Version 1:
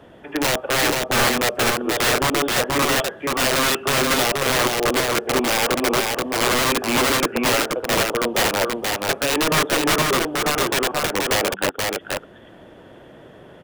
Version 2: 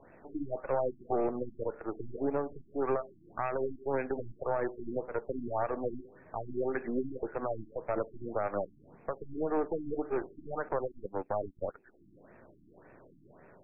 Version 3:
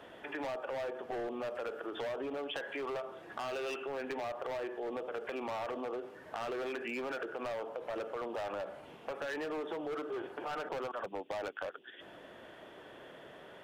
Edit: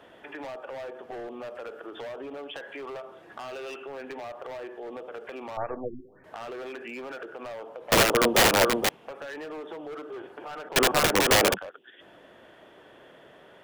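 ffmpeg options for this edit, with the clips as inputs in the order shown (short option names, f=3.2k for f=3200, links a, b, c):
-filter_complex "[0:a]asplit=2[a][b];[2:a]asplit=4[c][d][e][f];[c]atrim=end=5.572[g];[1:a]atrim=start=5.568:end=6.242[h];[d]atrim=start=6.238:end=7.922[i];[a]atrim=start=7.918:end=8.892[j];[e]atrim=start=8.888:end=10.762[k];[b]atrim=start=10.758:end=11.582[l];[f]atrim=start=11.578[m];[g][h]acrossfade=d=0.004:c1=hsin:c2=hsin[n];[n][i]acrossfade=d=0.004:c1=hsin:c2=hsin[o];[o][j]acrossfade=d=0.004:c1=hsin:c2=hsin[p];[p][k]acrossfade=d=0.004:c1=hsin:c2=hsin[q];[q][l]acrossfade=d=0.004:c1=hsin:c2=hsin[r];[r][m]acrossfade=d=0.004:c1=hsin:c2=hsin"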